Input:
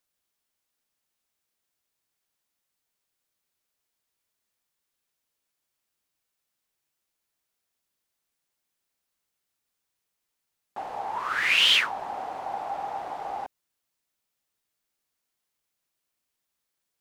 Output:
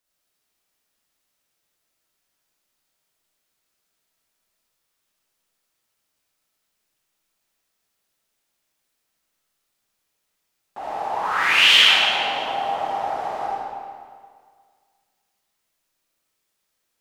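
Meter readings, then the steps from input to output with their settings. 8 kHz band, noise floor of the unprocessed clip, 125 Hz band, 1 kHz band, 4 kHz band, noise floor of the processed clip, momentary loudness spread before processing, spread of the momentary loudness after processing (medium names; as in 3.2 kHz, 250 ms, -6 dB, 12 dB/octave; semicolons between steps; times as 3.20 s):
+6.5 dB, -82 dBFS, no reading, +7.5 dB, +8.0 dB, -76 dBFS, 19 LU, 21 LU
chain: algorithmic reverb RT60 1.9 s, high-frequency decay 0.9×, pre-delay 10 ms, DRR -7 dB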